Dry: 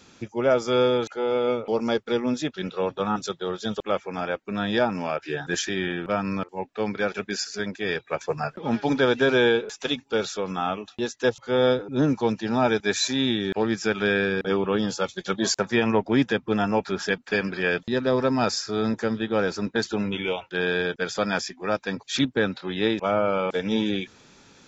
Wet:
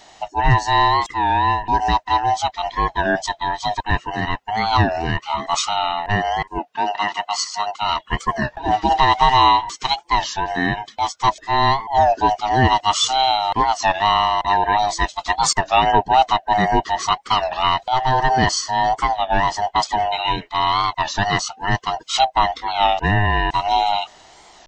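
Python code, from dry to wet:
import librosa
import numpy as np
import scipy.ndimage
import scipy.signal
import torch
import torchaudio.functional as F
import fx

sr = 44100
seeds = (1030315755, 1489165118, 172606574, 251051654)

y = fx.band_swap(x, sr, width_hz=500)
y = fx.highpass(y, sr, hz=260.0, slope=12, at=(6.6, 7.82))
y = fx.record_warp(y, sr, rpm=33.33, depth_cents=160.0)
y = y * librosa.db_to_amplitude(6.5)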